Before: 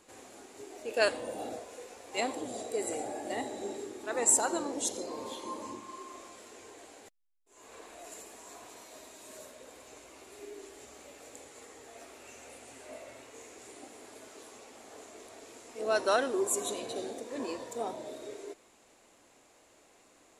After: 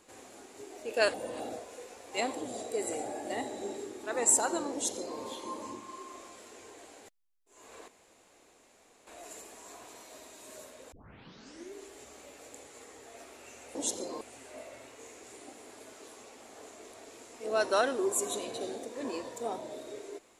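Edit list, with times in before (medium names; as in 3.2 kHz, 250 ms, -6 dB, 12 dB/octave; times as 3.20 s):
1.14–1.40 s: reverse
4.73–5.19 s: copy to 12.56 s
7.88 s: insert room tone 1.19 s
9.73 s: tape start 0.83 s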